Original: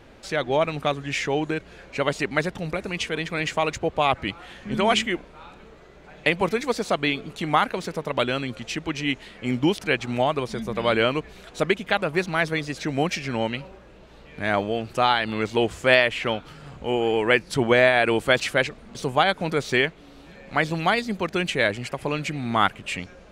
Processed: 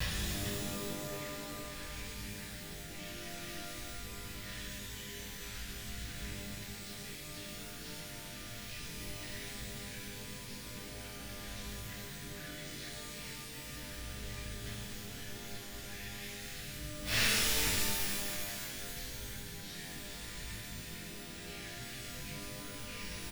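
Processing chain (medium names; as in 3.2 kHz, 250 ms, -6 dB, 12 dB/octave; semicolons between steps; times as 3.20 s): one-bit delta coder 32 kbps, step -17 dBFS; recorder AGC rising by 23 dB/s; elliptic band-stop 170–1600 Hz, stop band 40 dB; expander -16 dBFS; bass shelf 86 Hz +7.5 dB; compression 10:1, threshold -28 dBFS, peak gain reduction 18.5 dB; bit crusher 8-bit; inverted gate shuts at -34 dBFS, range -35 dB; on a send: frequency-shifting echo 440 ms, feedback 37%, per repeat +78 Hz, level -7.5 dB; on the sum: pitch-shifted reverb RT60 2.1 s, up +12 st, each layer -2 dB, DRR -9.5 dB; trim +9.5 dB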